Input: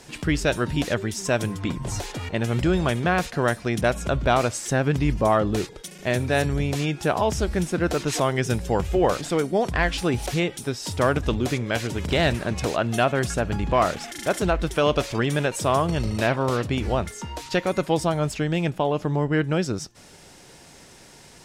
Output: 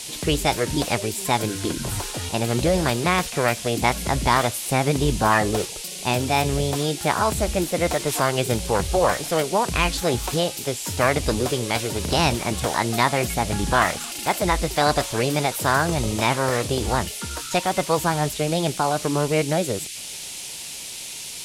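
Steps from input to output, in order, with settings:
formants moved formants +6 semitones
noise in a band 2,300–11,000 Hz −36 dBFS
level +1 dB

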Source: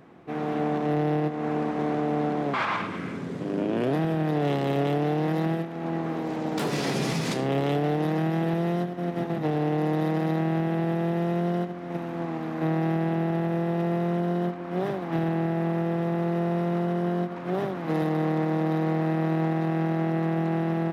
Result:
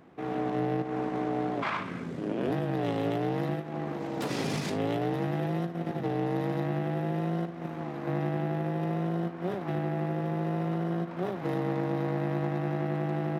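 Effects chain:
time stretch by overlap-add 0.64×, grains 38 ms
level −3 dB

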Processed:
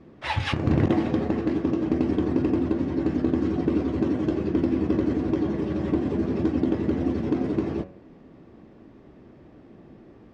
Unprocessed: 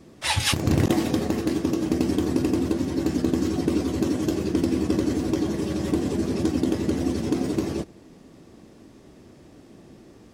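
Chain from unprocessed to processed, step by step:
low-pass filter 2,200 Hz 12 dB per octave
hum removal 92.79 Hz, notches 31

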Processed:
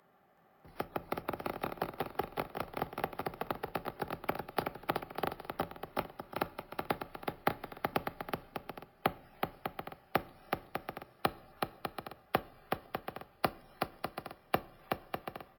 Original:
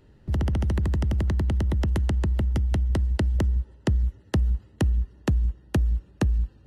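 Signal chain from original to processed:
high-pass filter 1,200 Hz 12 dB per octave
high-shelf EQ 4,700 Hz −7 dB
bouncing-ball delay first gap 160 ms, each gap 0.6×, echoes 5
wrong playback speed 78 rpm record played at 33 rpm
on a send at −16.5 dB: convolution reverb RT60 0.50 s, pre-delay 5 ms
on the sum: decimation without filtering 3×
level +5.5 dB

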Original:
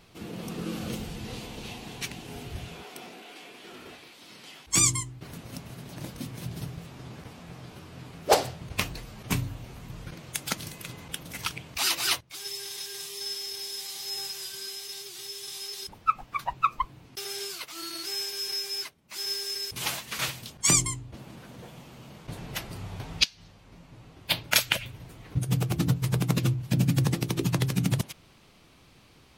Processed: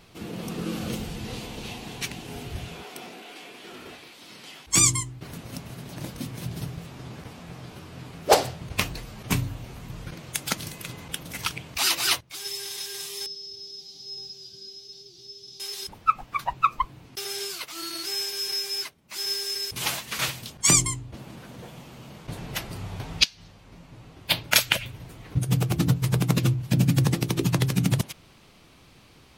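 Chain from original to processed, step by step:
0:13.26–0:15.60: drawn EQ curve 230 Hz 0 dB, 600 Hz −12 dB, 950 Hz −23 dB, 1,900 Hz −28 dB, 5,300 Hz −5 dB, 8,400 Hz −29 dB
level +3 dB

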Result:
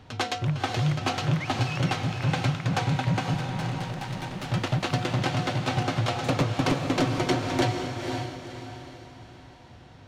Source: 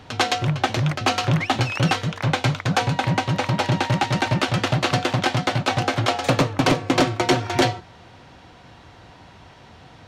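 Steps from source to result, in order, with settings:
low-shelf EQ 230 Hz +6 dB
0:03.34–0:04.49: tube saturation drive 24 dB, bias 0.75
feedback delay with all-pass diffusion 507 ms, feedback 40%, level −5 dB
level −8.5 dB

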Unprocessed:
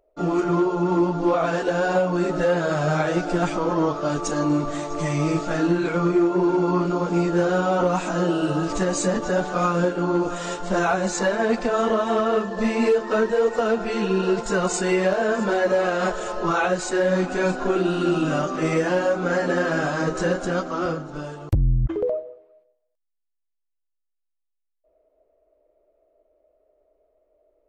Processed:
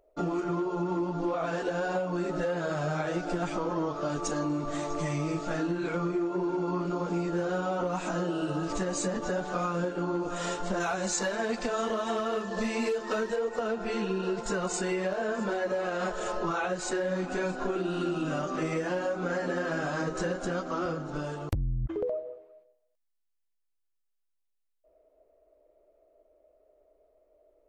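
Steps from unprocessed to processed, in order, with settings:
0:10.80–0:13.36: high-shelf EQ 2,800 Hz +9 dB
downward compressor 4 to 1, threshold −29 dBFS, peak gain reduction 11.5 dB

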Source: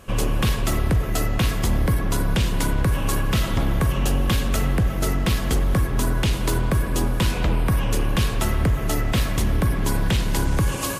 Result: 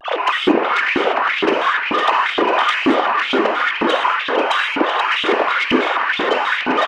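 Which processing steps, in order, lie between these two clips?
three sine waves on the formant tracks
tempo change 1.6×
echo with a time of its own for lows and highs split 670 Hz, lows 336 ms, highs 499 ms, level −4 dB
tube saturation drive 13 dB, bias 0.35
reverb whose tail is shaped and stops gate 260 ms flat, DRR 1 dB
auto-filter high-pass saw up 2.1 Hz 270–3,000 Hz
pitch modulation by a square or saw wave square 3.1 Hz, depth 160 cents

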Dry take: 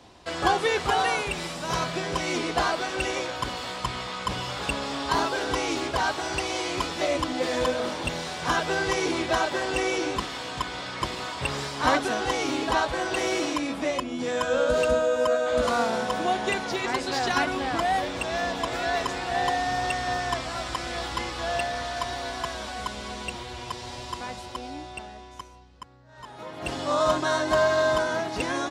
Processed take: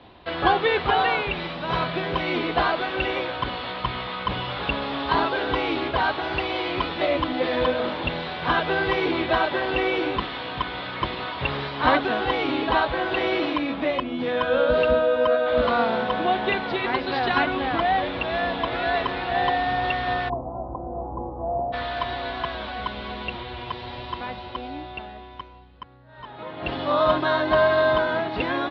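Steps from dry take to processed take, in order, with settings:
Butterworth low-pass 4,000 Hz 48 dB per octave, from 0:20.28 930 Hz, from 0:21.72 4,000 Hz
level +3 dB

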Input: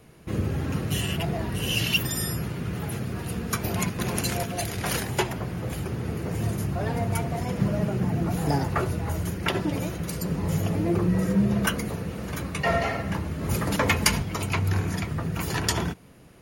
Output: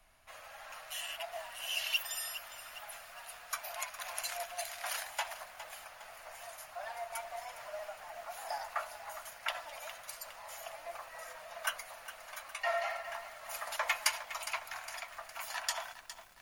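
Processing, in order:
elliptic high-pass filter 630 Hz, stop band 40 dB
background noise brown −63 dBFS
feedback echo at a low word length 410 ms, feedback 55%, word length 7 bits, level −12 dB
level −8 dB

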